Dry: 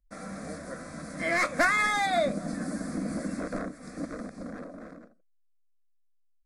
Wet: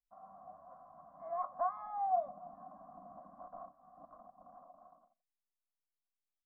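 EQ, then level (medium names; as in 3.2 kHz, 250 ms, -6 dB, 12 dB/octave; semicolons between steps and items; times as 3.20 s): cascade formant filter a; static phaser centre 1 kHz, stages 4; +1.0 dB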